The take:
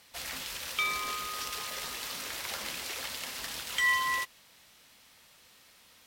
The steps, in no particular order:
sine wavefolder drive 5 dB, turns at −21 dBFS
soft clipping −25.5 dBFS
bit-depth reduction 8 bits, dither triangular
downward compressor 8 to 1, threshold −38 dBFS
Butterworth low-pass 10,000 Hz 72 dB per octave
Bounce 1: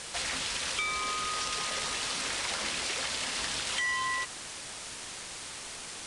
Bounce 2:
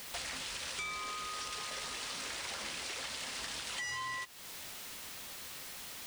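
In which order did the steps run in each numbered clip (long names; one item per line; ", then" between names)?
soft clipping, then downward compressor, then bit-depth reduction, then sine wavefolder, then Butterworth low-pass
sine wavefolder, then Butterworth low-pass, then bit-depth reduction, then downward compressor, then soft clipping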